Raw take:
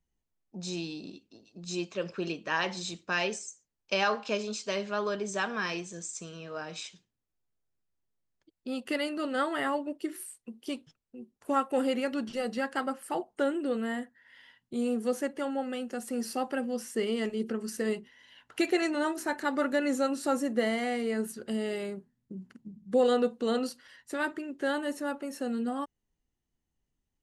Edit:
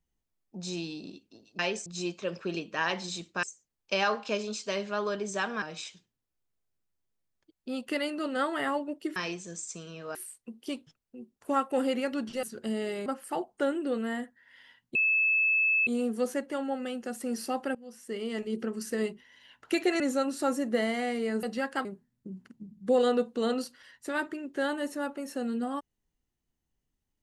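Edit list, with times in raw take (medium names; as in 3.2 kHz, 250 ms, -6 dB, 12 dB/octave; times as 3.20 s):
3.16–3.43 s: move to 1.59 s
5.62–6.61 s: move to 10.15 s
12.43–12.85 s: swap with 21.27–21.90 s
14.74 s: add tone 2.61 kHz -22 dBFS 0.92 s
16.62–17.48 s: fade in, from -21 dB
18.87–19.84 s: delete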